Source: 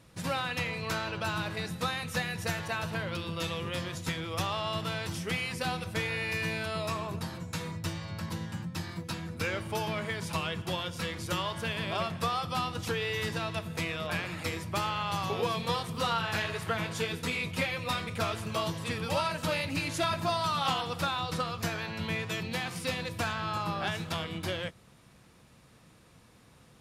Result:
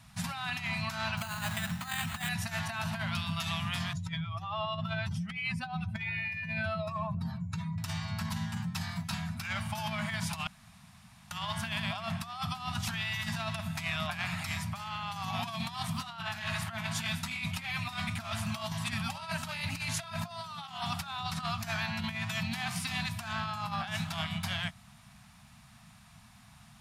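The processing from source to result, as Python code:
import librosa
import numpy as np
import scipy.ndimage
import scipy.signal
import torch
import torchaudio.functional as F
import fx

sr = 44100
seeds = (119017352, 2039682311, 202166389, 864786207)

y = fx.resample_bad(x, sr, factor=8, down='none', up='hold', at=(1.17, 2.29))
y = fx.spec_expand(y, sr, power=1.8, at=(3.93, 7.78))
y = fx.edit(y, sr, fx.room_tone_fill(start_s=10.47, length_s=0.84), tone=tone)
y = scipy.signal.sosfilt(scipy.signal.ellip(3, 1.0, 40, [230.0, 690.0], 'bandstop', fs=sr, output='sos'), y)
y = fx.over_compress(y, sr, threshold_db=-36.0, ratio=-0.5)
y = y * librosa.db_to_amplitude(1.5)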